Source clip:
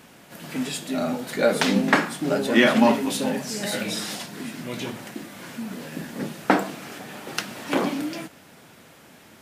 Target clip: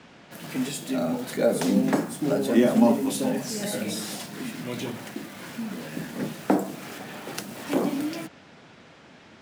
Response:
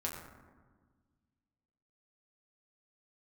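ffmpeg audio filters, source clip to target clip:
-filter_complex "[0:a]acrossover=split=150|750|6300[s0][s1][s2][s3];[s2]acompressor=threshold=0.0141:ratio=6[s4];[s3]acrusher=bits=7:mix=0:aa=0.000001[s5];[s0][s1][s4][s5]amix=inputs=4:normalize=0"

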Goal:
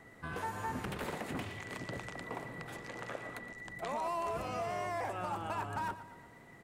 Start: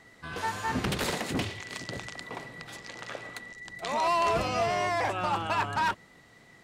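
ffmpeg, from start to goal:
-filter_complex "[0:a]equalizer=f=4600:t=o:w=1.8:g=-12,acrossover=split=820|4900[s0][s1][s2];[s0]acompressor=threshold=0.00794:ratio=4[s3];[s1]acompressor=threshold=0.00631:ratio=4[s4];[s2]acompressor=threshold=0.00126:ratio=4[s5];[s3][s4][s5]amix=inputs=3:normalize=0,aecho=1:1:117|234|351|468|585|702:0.2|0.114|0.0648|0.037|0.0211|0.012,volume=1.19"

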